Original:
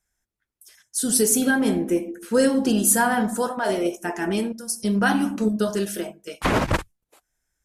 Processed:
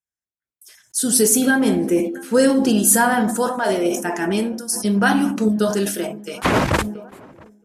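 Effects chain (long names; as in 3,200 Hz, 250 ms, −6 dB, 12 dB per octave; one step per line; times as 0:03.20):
high-pass filter 74 Hz
tape delay 674 ms, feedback 68%, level −23.5 dB, low-pass 1,300 Hz
noise gate with hold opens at −42 dBFS
level that may fall only so fast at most 75 dB per second
level +3.5 dB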